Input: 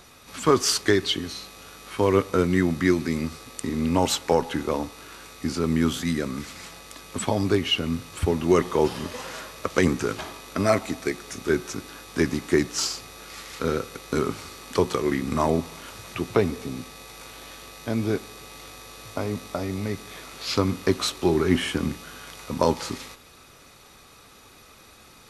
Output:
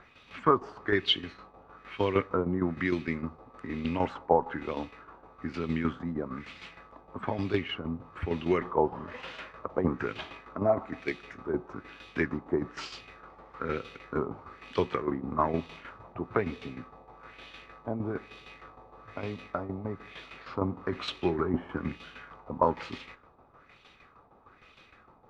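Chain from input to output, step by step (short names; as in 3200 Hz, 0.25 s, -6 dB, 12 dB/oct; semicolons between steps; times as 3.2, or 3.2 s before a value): tremolo saw down 6.5 Hz, depth 65%; LFO low-pass sine 1.1 Hz 820–3100 Hz; gain -5 dB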